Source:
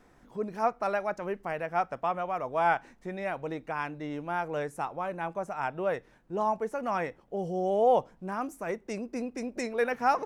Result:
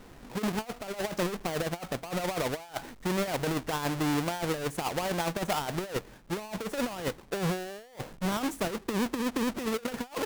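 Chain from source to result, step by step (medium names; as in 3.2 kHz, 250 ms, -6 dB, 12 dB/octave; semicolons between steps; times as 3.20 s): square wave that keeps the level; compressor with a negative ratio -31 dBFS, ratio -0.5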